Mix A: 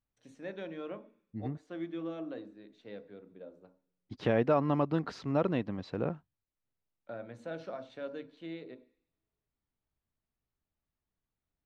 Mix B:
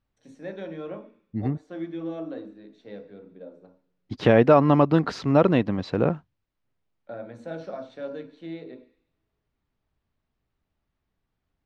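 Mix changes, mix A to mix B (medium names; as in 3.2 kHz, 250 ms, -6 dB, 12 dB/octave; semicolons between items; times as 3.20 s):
first voice: send +9.0 dB; second voice +11.0 dB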